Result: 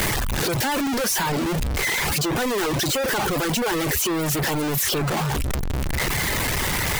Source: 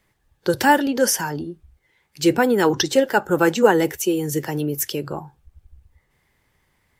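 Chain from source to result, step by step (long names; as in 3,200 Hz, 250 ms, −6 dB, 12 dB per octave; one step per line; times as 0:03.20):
sign of each sample alone
reverb reduction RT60 0.57 s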